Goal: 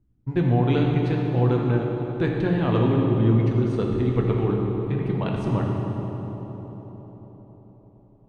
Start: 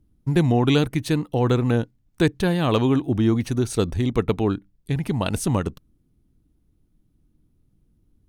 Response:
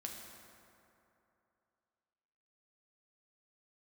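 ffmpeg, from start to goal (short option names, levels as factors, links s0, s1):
-filter_complex "[0:a]lowpass=2500[s0];[1:a]atrim=start_sample=2205,asetrate=24255,aresample=44100[s1];[s0][s1]afir=irnorm=-1:irlink=0,volume=0.668"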